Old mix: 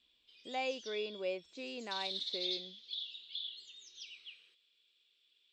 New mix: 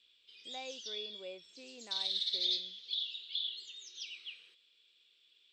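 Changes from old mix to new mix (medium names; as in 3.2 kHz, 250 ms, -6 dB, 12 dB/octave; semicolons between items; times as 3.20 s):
speech -9.0 dB; background +5.0 dB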